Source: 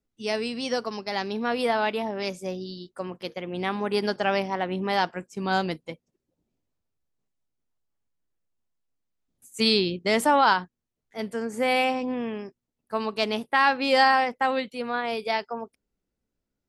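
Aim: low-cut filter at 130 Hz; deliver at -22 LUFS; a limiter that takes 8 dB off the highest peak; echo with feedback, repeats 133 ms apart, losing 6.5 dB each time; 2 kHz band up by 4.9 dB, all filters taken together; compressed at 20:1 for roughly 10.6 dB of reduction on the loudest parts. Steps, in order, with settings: high-pass 130 Hz; peaking EQ 2 kHz +6 dB; compression 20:1, threshold -22 dBFS; peak limiter -19 dBFS; feedback delay 133 ms, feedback 47%, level -6.5 dB; trim +8 dB

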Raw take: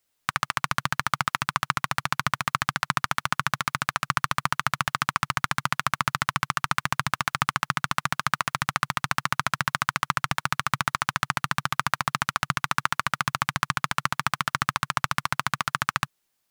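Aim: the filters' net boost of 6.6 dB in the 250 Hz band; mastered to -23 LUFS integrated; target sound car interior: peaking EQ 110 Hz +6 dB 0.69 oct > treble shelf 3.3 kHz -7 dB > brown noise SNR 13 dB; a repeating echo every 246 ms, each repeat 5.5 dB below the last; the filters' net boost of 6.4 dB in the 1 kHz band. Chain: peaking EQ 110 Hz +6 dB 0.69 oct; peaking EQ 250 Hz +8.5 dB; peaking EQ 1 kHz +8.5 dB; treble shelf 3.3 kHz -7 dB; feedback delay 246 ms, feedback 53%, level -5.5 dB; brown noise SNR 13 dB; trim -1.5 dB

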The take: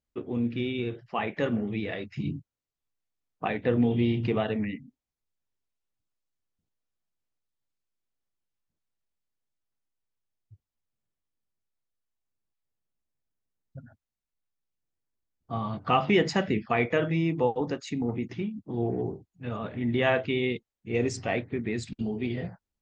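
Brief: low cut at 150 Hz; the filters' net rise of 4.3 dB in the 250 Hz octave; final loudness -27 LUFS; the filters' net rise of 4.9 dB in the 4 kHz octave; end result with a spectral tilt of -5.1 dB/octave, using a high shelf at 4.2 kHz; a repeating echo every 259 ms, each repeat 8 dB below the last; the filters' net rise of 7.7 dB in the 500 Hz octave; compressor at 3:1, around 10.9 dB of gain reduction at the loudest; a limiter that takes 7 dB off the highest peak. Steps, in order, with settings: high-pass 150 Hz; peaking EQ 250 Hz +3.5 dB; peaking EQ 500 Hz +8.5 dB; peaking EQ 4 kHz +9 dB; treble shelf 4.2 kHz -3.5 dB; compression 3:1, threshold -27 dBFS; peak limiter -20 dBFS; feedback delay 259 ms, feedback 40%, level -8 dB; trim +4 dB

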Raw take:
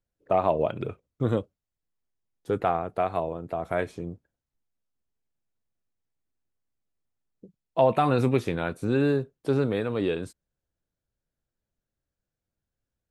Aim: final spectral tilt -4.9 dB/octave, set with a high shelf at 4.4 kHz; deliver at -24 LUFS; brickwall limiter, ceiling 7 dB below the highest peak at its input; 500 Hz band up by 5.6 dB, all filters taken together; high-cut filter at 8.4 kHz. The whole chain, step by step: low-pass 8.4 kHz; peaking EQ 500 Hz +7 dB; treble shelf 4.4 kHz +3.5 dB; trim +0.5 dB; peak limiter -11.5 dBFS

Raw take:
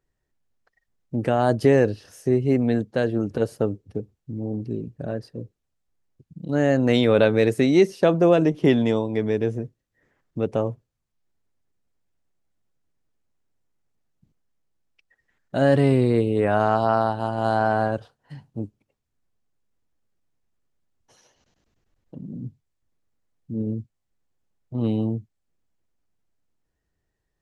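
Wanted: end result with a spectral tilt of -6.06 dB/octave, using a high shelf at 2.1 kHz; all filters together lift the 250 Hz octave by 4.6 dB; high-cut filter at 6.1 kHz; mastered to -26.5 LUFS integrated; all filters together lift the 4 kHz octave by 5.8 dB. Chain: low-pass 6.1 kHz; peaking EQ 250 Hz +5.5 dB; treble shelf 2.1 kHz +4 dB; peaking EQ 4 kHz +4 dB; trim -7.5 dB

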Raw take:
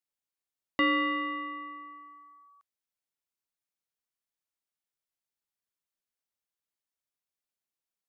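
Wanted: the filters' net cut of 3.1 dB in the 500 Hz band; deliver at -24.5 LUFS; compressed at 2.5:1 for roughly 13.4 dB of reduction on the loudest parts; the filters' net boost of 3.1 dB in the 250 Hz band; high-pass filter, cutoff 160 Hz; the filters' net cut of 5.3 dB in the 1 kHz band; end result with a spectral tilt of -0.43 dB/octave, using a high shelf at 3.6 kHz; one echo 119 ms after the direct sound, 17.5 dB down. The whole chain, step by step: high-pass 160 Hz; peaking EQ 250 Hz +6 dB; peaking EQ 500 Hz -3.5 dB; peaking EQ 1 kHz -5 dB; treble shelf 3.6 kHz -7.5 dB; compression 2.5:1, threshold -44 dBFS; delay 119 ms -17.5 dB; trim +18.5 dB

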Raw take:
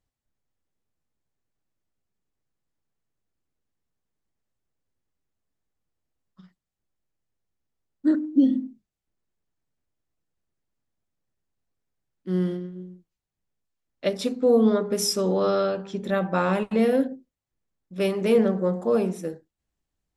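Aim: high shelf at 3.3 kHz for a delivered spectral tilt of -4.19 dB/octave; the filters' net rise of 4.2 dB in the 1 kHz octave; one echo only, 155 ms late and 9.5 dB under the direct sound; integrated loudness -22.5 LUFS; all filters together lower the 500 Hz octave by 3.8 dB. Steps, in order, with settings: peaking EQ 500 Hz -6 dB; peaking EQ 1 kHz +6.5 dB; treble shelf 3.3 kHz +7.5 dB; delay 155 ms -9.5 dB; trim +1.5 dB

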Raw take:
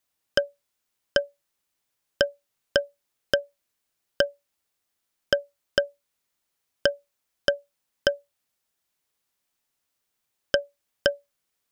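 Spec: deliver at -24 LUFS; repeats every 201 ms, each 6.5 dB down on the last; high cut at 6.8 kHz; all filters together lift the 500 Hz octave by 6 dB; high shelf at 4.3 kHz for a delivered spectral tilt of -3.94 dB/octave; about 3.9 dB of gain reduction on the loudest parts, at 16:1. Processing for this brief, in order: low-pass 6.8 kHz; peaking EQ 500 Hz +7 dB; treble shelf 4.3 kHz -4.5 dB; compression 16:1, threshold -15 dBFS; feedback delay 201 ms, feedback 47%, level -6.5 dB; trim +4 dB

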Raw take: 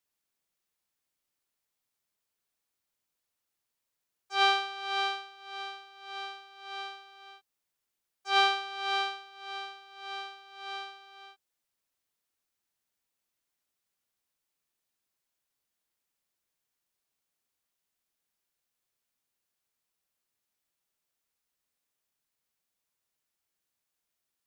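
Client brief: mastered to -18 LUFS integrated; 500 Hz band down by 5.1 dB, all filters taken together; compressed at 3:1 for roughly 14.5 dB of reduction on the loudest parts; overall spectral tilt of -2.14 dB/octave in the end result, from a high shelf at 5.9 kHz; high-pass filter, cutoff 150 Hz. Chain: high-pass 150 Hz; peaking EQ 500 Hz -7.5 dB; treble shelf 5.9 kHz -8.5 dB; compression 3:1, threshold -41 dBFS; trim +26.5 dB

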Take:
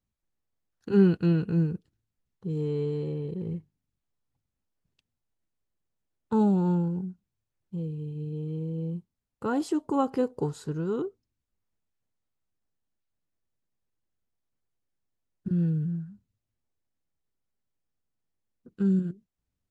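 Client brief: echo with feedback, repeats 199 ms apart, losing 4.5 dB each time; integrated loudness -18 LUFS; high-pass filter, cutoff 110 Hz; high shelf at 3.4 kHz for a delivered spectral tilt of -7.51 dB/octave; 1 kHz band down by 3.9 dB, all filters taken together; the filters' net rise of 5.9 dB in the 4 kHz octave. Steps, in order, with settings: high-pass 110 Hz; peaking EQ 1 kHz -5.5 dB; treble shelf 3.4 kHz +4 dB; peaking EQ 4 kHz +5 dB; feedback delay 199 ms, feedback 60%, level -4.5 dB; trim +10.5 dB

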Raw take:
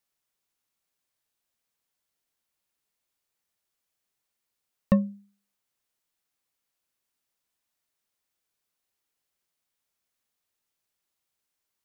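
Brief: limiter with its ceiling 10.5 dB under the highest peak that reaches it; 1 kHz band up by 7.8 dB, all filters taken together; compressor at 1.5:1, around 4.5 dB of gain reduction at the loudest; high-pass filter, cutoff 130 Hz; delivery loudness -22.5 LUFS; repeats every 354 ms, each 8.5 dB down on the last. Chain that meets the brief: high-pass 130 Hz; peaking EQ 1 kHz +8.5 dB; compression 1.5:1, threshold -28 dBFS; peak limiter -21.5 dBFS; feedback delay 354 ms, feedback 38%, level -8.5 dB; trim +16.5 dB

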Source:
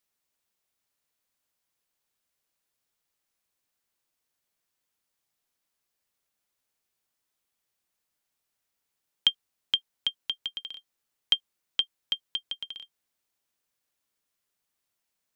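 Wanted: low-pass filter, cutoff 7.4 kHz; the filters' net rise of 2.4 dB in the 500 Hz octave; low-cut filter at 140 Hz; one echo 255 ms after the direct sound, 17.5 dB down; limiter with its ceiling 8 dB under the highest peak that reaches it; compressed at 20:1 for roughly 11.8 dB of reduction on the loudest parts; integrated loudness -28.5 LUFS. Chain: high-pass 140 Hz; low-pass 7.4 kHz; peaking EQ 500 Hz +3 dB; compression 20:1, threshold -32 dBFS; peak limiter -19 dBFS; delay 255 ms -17.5 dB; trim +13.5 dB

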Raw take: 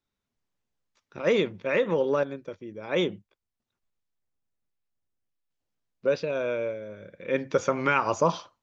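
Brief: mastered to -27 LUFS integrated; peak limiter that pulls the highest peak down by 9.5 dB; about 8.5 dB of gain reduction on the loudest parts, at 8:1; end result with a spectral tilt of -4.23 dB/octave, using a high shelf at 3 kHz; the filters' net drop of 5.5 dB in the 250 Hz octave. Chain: peaking EQ 250 Hz -8 dB; treble shelf 3 kHz -7.5 dB; compression 8:1, threshold -29 dBFS; trim +11.5 dB; peak limiter -16 dBFS

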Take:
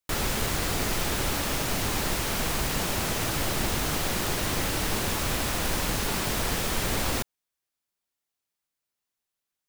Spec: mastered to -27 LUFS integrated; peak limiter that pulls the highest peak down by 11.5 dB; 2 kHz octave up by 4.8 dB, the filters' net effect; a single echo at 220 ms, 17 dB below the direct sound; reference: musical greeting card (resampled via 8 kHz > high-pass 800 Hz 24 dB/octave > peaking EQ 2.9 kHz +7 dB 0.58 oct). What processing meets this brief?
peaking EQ 2 kHz +3 dB; peak limiter -23.5 dBFS; delay 220 ms -17 dB; resampled via 8 kHz; high-pass 800 Hz 24 dB/octave; peaking EQ 2.9 kHz +7 dB 0.58 oct; trim +6.5 dB

